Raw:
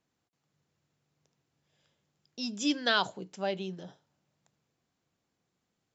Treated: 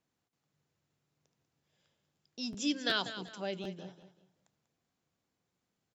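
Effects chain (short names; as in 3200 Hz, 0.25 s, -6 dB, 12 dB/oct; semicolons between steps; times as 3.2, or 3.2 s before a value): on a send: feedback echo 0.192 s, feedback 29%, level -12 dB; on the sum: dynamic EQ 930 Hz, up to -7 dB, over -43 dBFS, Q 1.2; crackling interface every 0.37 s, samples 512, repeat, from 0.67; gain -3 dB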